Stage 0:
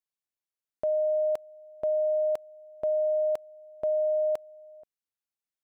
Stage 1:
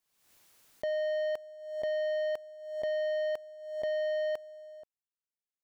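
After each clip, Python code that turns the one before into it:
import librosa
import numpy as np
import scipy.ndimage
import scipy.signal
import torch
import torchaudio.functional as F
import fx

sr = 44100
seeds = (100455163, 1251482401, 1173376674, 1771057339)

y = fx.leveller(x, sr, passes=2)
y = fx.pre_swell(y, sr, db_per_s=63.0)
y = y * 10.0 ** (-6.5 / 20.0)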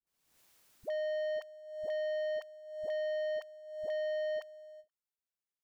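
y = fx.dispersion(x, sr, late='highs', ms=69.0, hz=460.0)
y = fx.end_taper(y, sr, db_per_s=400.0)
y = y * 10.0 ** (-3.5 / 20.0)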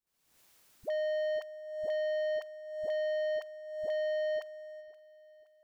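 y = fx.echo_feedback(x, sr, ms=523, feedback_pct=44, wet_db=-20.0)
y = y * 10.0 ** (2.5 / 20.0)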